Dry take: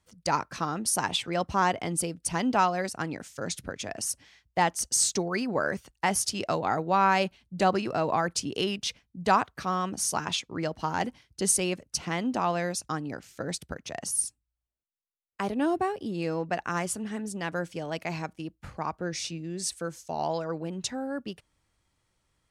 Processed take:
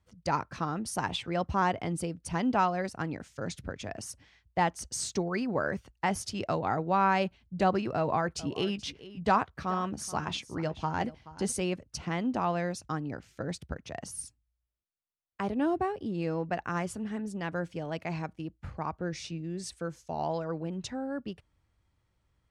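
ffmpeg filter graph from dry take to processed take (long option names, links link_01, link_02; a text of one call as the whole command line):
ffmpeg -i in.wav -filter_complex "[0:a]asettb=1/sr,asplit=3[link_01][link_02][link_03];[link_01]atrim=end=7.964[link_04];[link_02]atrim=start=7.96:end=11.62,asetpts=PTS-STARTPTS,afade=type=in:duration=0.004:curve=qsin,afade=type=out:start_time=3.656:duration=0.004:curve=qsin,asplit=2[link_05][link_06];[link_06]adelay=14,volume=-14dB[link_07];[link_05][link_07]amix=inputs=2:normalize=0,atrim=end_sample=161406,aecho=1:1:429:0.141,atrim=end_sample=161406[link_08];[link_03]atrim=start=11.616[link_09];[link_04][link_08]acrossfade=duration=0.004:curve1=hsin:curve2=qsin[link_10];[link_10][link_09]acrossfade=duration=0.004:curve1=qsin:curve2=hsin,lowpass=frequency=2900:poles=1,equalizer=frequency=71:width=0.69:gain=8,volume=-2.5dB" out.wav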